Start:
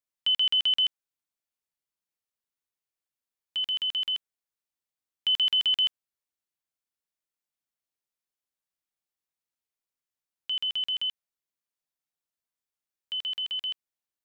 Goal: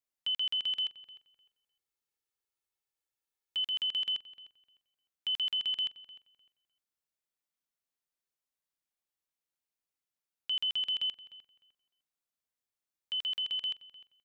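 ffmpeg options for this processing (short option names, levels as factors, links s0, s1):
-filter_complex "[0:a]asettb=1/sr,asplit=3[s0][s1][s2];[s0]atrim=end=0.774[s3];[s1]atrim=start=0.77:end=3.65,asetpts=PTS-STARTPTS,afade=t=in:d=0.004:c=qsin,afade=t=out:st=2.876:d=0.004:c=qsin,aecho=1:1:2.3:0.57,atrim=end_sample=127008[s4];[s2]atrim=start=3.646[s5];[s3][s4]acrossfade=d=0.004:c1=hsin:c2=qsin[s6];[s6][s5]acrossfade=d=0.004:c1=qsin:c2=hsin,alimiter=level_in=1.19:limit=0.0631:level=0:latency=1:release=197,volume=0.841,asplit=2[s7][s8];[s8]adelay=303,lowpass=f=2200:p=1,volume=0.178,asplit=2[s9][s10];[s10]adelay=303,lowpass=f=2200:p=1,volume=0.24,asplit=2[s11][s12];[s12]adelay=303,lowpass=f=2200:p=1,volume=0.24[s13];[s9][s11][s13]amix=inputs=3:normalize=0[s14];[s7][s14]amix=inputs=2:normalize=0,volume=0.794"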